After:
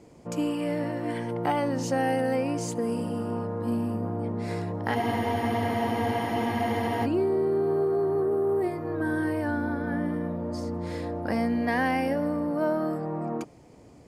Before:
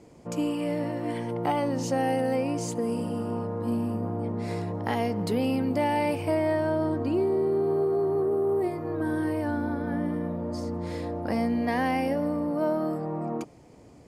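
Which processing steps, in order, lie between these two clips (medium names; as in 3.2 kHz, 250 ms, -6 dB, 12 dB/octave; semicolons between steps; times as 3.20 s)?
dynamic bell 1.6 kHz, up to +6 dB, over -51 dBFS, Q 3.1; spectral freeze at 4.96 s, 2.09 s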